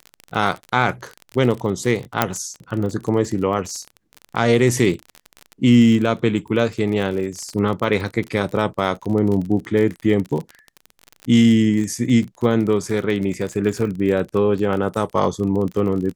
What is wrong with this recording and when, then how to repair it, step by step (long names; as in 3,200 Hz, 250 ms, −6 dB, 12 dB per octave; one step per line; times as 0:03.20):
surface crackle 32 per second −25 dBFS
0:02.22: click −1 dBFS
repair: click removal